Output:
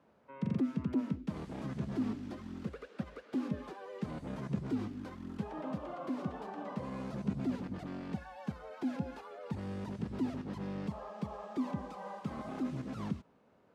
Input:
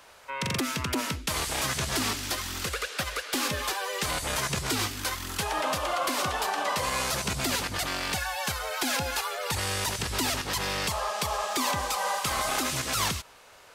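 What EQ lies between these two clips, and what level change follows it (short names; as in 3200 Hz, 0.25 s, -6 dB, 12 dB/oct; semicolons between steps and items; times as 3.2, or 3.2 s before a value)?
band-pass 210 Hz, Q 2.6; +4.5 dB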